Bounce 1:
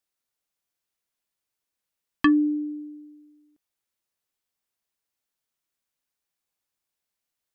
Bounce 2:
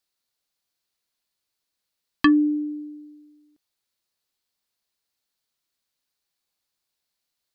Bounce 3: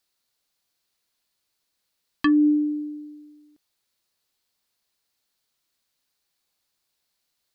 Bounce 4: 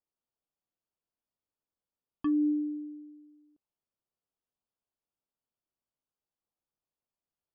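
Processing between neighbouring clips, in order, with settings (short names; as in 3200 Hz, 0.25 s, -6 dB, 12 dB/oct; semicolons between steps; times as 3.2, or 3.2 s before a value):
bell 4300 Hz +8 dB 0.55 oct; gain +2 dB
limiter -18.5 dBFS, peak gain reduction 10.5 dB; gain +4.5 dB
running mean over 22 samples; gain -8.5 dB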